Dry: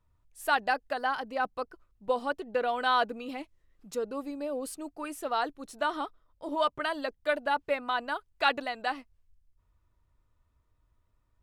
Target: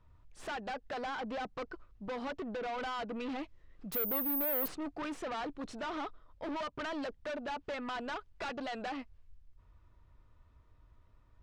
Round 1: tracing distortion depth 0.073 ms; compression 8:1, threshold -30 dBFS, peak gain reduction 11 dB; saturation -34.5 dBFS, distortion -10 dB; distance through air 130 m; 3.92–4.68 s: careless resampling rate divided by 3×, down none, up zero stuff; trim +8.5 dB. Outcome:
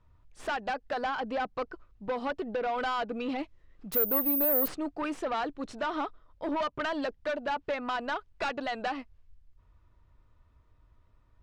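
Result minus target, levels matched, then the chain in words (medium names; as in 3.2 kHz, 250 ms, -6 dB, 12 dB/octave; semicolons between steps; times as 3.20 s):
saturation: distortion -6 dB
tracing distortion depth 0.073 ms; compression 8:1, threshold -30 dBFS, peak gain reduction 11 dB; saturation -44 dBFS, distortion -4 dB; distance through air 130 m; 3.92–4.68 s: careless resampling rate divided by 3×, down none, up zero stuff; trim +8.5 dB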